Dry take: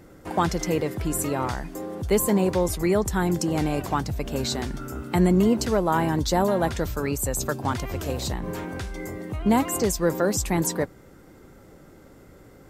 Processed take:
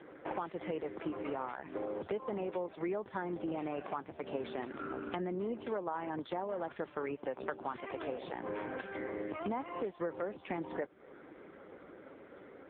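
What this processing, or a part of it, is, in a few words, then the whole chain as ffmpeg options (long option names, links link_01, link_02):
voicemail: -af "highpass=340,lowpass=3100,acompressor=threshold=-37dB:ratio=8,volume=3.5dB" -ar 8000 -c:a libopencore_amrnb -b:a 5150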